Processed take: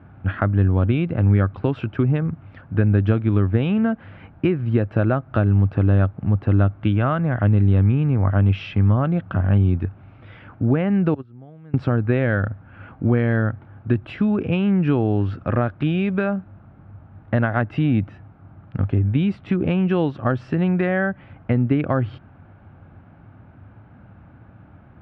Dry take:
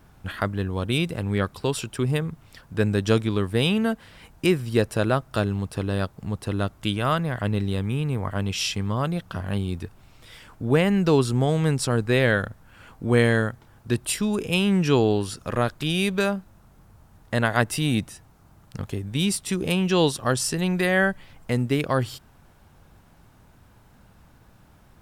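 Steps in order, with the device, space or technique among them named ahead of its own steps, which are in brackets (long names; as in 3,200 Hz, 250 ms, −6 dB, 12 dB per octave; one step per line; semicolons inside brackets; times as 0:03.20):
0:11.14–0:11.74: noise gate −14 dBFS, range −29 dB
bass amplifier (downward compressor 5 to 1, threshold −23 dBFS, peak gain reduction 9 dB; loudspeaker in its box 77–2,100 Hz, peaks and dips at 98 Hz +8 dB, 280 Hz +3 dB, 440 Hz −6 dB, 1,000 Hz −7 dB, 1,900 Hz −6 dB)
level +8 dB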